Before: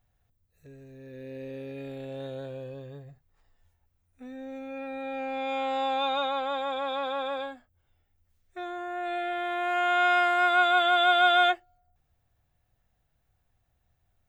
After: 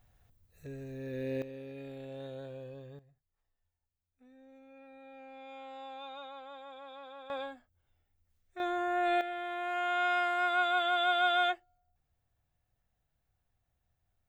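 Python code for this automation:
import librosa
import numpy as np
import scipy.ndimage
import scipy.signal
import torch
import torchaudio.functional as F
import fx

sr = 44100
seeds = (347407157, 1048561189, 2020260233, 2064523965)

y = fx.gain(x, sr, db=fx.steps((0.0, 5.5), (1.42, -6.0), (2.99, -17.5), (7.3, -5.0), (8.6, 3.0), (9.21, -7.0)))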